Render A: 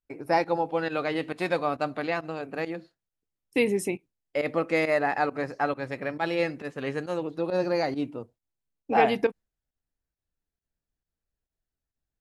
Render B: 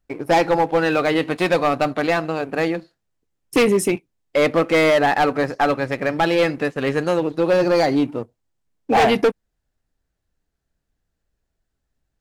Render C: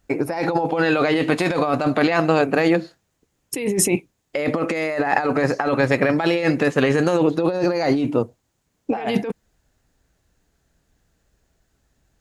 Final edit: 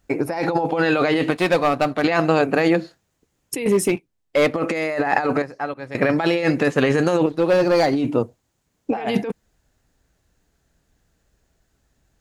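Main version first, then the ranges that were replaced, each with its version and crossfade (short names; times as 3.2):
C
1.31–2.04 from B
3.66–4.56 from B
5.42–5.95 from A
7.26–7.93 from B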